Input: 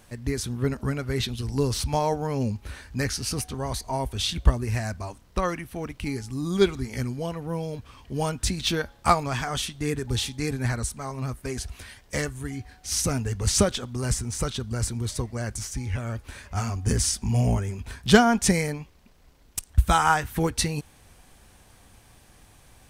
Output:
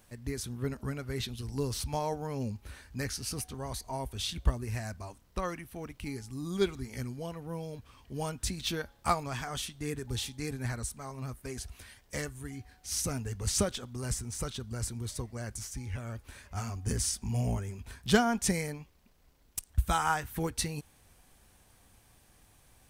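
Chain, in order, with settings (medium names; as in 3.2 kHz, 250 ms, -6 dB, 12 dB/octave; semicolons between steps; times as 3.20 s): treble shelf 12 kHz +9 dB; trim -8.5 dB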